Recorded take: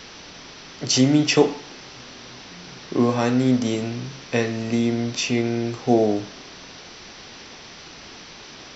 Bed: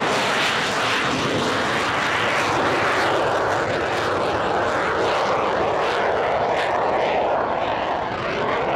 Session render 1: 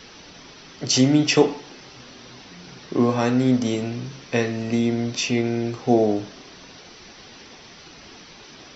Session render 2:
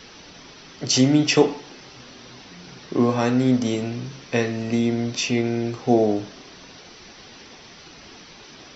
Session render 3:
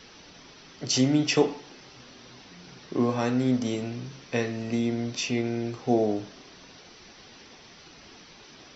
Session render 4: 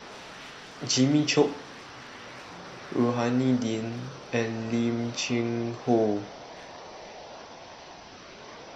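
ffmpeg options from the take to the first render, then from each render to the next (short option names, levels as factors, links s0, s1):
-af "afftdn=nr=6:nf=-42"
-af anull
-af "volume=0.531"
-filter_complex "[1:a]volume=0.0596[s0];[0:a][s0]amix=inputs=2:normalize=0"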